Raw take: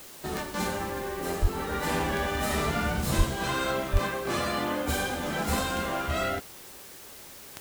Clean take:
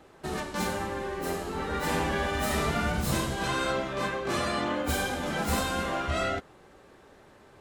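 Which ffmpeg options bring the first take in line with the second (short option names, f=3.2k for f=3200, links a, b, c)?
-filter_complex "[0:a]adeclick=t=4,asplit=3[a][b][c];[a]afade=t=out:st=1.41:d=0.02[d];[b]highpass=f=140:w=0.5412,highpass=f=140:w=1.3066,afade=t=in:st=1.41:d=0.02,afade=t=out:st=1.53:d=0.02[e];[c]afade=t=in:st=1.53:d=0.02[f];[d][e][f]amix=inputs=3:normalize=0,asplit=3[g][h][i];[g]afade=t=out:st=3.17:d=0.02[j];[h]highpass=f=140:w=0.5412,highpass=f=140:w=1.3066,afade=t=in:st=3.17:d=0.02,afade=t=out:st=3.29:d=0.02[k];[i]afade=t=in:st=3.29:d=0.02[l];[j][k][l]amix=inputs=3:normalize=0,asplit=3[m][n][o];[m]afade=t=out:st=3.92:d=0.02[p];[n]highpass=f=140:w=0.5412,highpass=f=140:w=1.3066,afade=t=in:st=3.92:d=0.02,afade=t=out:st=4.04:d=0.02[q];[o]afade=t=in:st=4.04:d=0.02[r];[p][q][r]amix=inputs=3:normalize=0,afwtdn=0.0045"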